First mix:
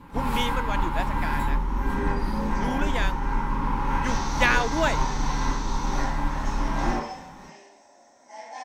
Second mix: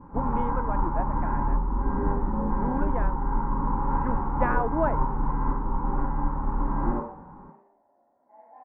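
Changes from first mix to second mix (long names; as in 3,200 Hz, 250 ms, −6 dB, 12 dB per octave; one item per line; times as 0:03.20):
second sound −10.5 dB
master: add low-pass filter 1,200 Hz 24 dB per octave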